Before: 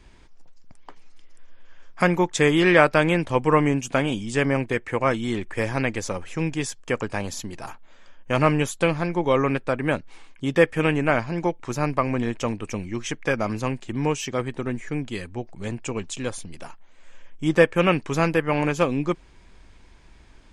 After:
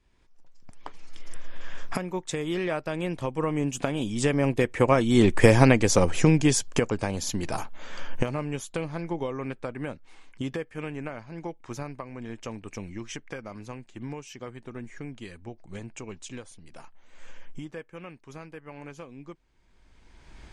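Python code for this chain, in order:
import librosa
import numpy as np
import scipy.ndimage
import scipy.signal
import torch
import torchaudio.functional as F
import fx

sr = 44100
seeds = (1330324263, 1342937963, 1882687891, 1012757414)

y = fx.recorder_agc(x, sr, target_db=-7.0, rise_db_per_s=24.0, max_gain_db=30)
y = fx.doppler_pass(y, sr, speed_mps=9, closest_m=4.5, pass_at_s=5.52)
y = fx.dynamic_eq(y, sr, hz=1700.0, q=0.76, threshold_db=-42.0, ratio=4.0, max_db=-6)
y = y * 10.0 ** (3.5 / 20.0)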